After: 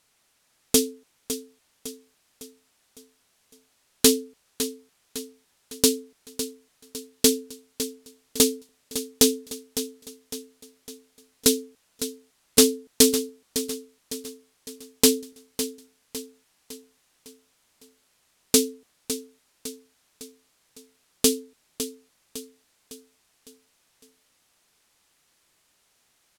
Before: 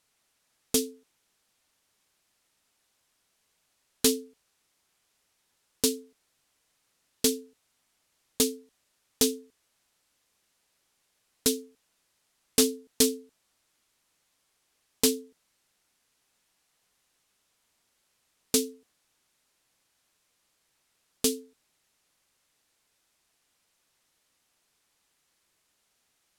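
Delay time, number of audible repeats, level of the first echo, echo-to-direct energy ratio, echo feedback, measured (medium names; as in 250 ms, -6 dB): 556 ms, 4, -11.0 dB, -10.0 dB, 47%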